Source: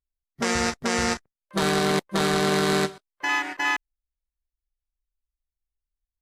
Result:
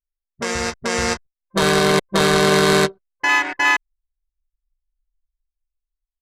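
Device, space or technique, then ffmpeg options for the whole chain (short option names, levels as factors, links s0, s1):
voice memo with heavy noise removal: -af "anlmdn=6.31,dynaudnorm=f=200:g=11:m=3.55,aecho=1:1:1.9:0.34"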